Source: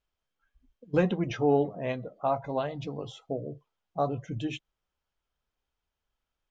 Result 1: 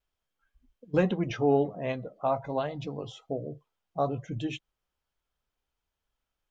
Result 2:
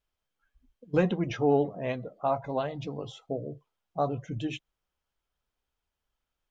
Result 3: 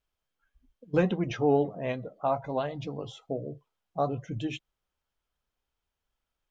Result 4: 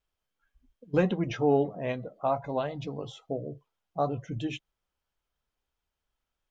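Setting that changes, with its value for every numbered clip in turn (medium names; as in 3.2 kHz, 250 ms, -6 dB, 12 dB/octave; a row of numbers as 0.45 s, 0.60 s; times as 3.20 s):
vibrato, rate: 1.2 Hz, 12 Hz, 7.7 Hz, 3 Hz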